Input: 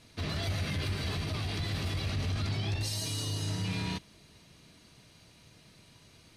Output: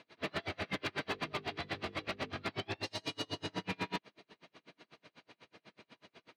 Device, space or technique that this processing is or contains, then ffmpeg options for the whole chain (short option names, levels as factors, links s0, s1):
helicopter radio: -filter_complex "[0:a]highpass=330,lowpass=2600,aeval=exprs='val(0)*pow(10,-37*(0.5-0.5*cos(2*PI*8.1*n/s))/20)':c=same,asoftclip=type=hard:threshold=0.0112,asettb=1/sr,asplit=3[s0][s1][s2];[s0]atrim=end=1.104[s3];[s1]atrim=start=1.1:end=2.46,asetpts=PTS-STARTPTS,afade=t=in:d=0.004:c=qsin,afade=t=out:st=1.356:d=0.004:c=qsin,bandreject=f=50:t=h:w=6,bandreject=f=100:t=h:w=6,bandreject=f=150:t=h:w=6,bandreject=f=200:t=h:w=6,bandreject=f=250:t=h:w=6,bandreject=f=300:t=h:w=6,bandreject=f=350:t=h:w=6,bandreject=f=400:t=h:w=6,bandreject=f=450:t=h:w=6,bandreject=f=500:t=h:w=6[s4];[s2]atrim=start=2.456[s5];[s3][s4]acrossfade=d=0.004:c1=hsin:c2=qsin[s6];[s6][s5]acrossfade=d=0.004:c1=qsin:c2=hsin,volume=3.16"